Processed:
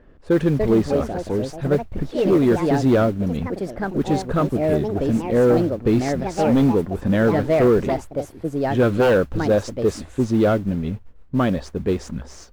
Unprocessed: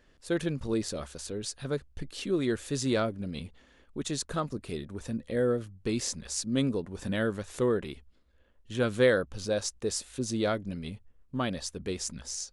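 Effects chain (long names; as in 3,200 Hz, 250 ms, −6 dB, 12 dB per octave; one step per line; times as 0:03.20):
noise that follows the level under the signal 15 dB
delay with pitch and tempo change per echo 355 ms, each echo +4 semitones, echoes 2, each echo −6 dB
sine wavefolder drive 10 dB, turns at −10 dBFS
drawn EQ curve 400 Hz 0 dB, 1,400 Hz −4 dB, 10,000 Hz −22 dB
one half of a high-frequency compander decoder only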